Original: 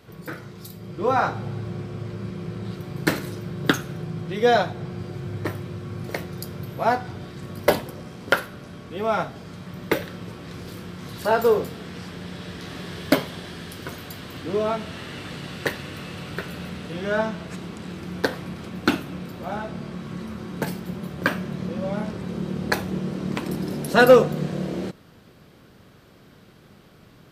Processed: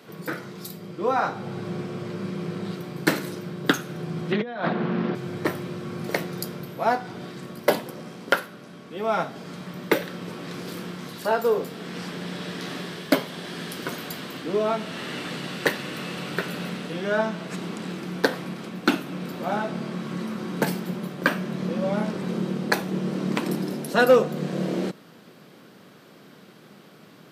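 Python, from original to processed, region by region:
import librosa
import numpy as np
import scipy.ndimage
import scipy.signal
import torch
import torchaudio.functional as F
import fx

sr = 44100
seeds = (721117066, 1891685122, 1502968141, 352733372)

y = fx.chain(x, sr, fx.cabinet(low_hz=150.0, low_slope=24, high_hz=3600.0, hz=(230.0, 1100.0, 1600.0), db=(9, 4, 4)),
    fx.over_compress(threshold_db=-29.0, ratio=-1.0),
    fx.doppler_dist(depth_ms=0.27), at=(4.32, 5.15))
y = scipy.signal.sosfilt(scipy.signal.butter(4, 160.0, 'highpass', fs=sr, output='sos'), y)
y = fx.rider(y, sr, range_db=4, speed_s=0.5)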